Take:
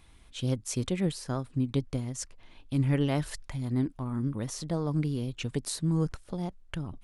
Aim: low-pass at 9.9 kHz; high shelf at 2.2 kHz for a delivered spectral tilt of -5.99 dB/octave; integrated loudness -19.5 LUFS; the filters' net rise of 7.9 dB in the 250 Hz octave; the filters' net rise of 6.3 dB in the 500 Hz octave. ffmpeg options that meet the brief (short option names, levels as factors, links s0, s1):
-af "lowpass=9900,equalizer=f=250:t=o:g=8.5,equalizer=f=500:t=o:g=4.5,highshelf=f=2200:g=7.5,volume=2.11"